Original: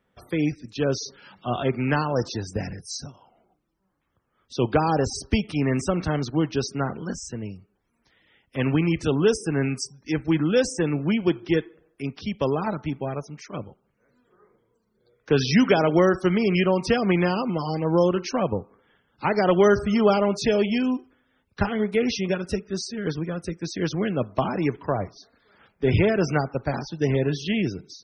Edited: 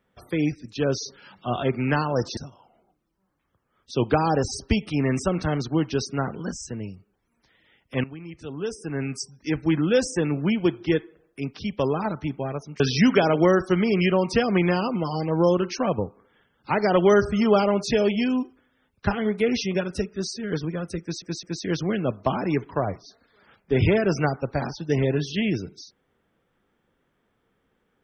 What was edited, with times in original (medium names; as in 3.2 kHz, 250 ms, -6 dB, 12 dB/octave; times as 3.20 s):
2.37–2.99 s: delete
8.66–9.97 s: fade in quadratic, from -18.5 dB
13.42–15.34 s: delete
23.55 s: stutter 0.21 s, 3 plays